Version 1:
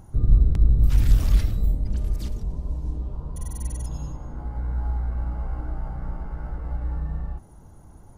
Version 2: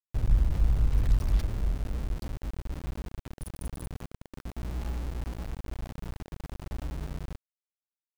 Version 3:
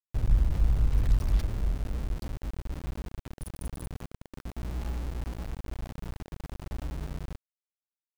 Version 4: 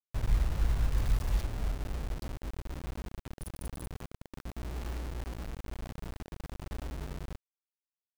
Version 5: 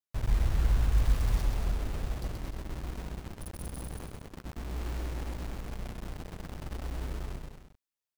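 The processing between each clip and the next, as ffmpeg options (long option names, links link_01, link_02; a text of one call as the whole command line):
ffmpeg -i in.wav -af "anlmdn=3.98,aeval=exprs='val(0)*gte(abs(val(0)),0.0447)':channel_layout=same,volume=-7dB" out.wav
ffmpeg -i in.wav -af anull out.wav
ffmpeg -i in.wav -af "acrusher=bits=5:mix=0:aa=0.000001,volume=-4.5dB" out.wav
ffmpeg -i in.wav -af "aecho=1:1:130|227.5|300.6|355.5|396.6:0.631|0.398|0.251|0.158|0.1" out.wav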